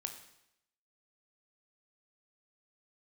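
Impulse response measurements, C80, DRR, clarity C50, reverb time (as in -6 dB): 11.5 dB, 5.5 dB, 9.0 dB, 0.80 s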